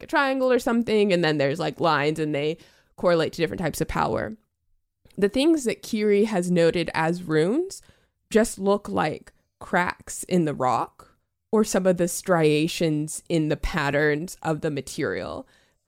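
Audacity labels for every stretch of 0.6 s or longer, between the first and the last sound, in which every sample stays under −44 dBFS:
4.350000	5.050000	silence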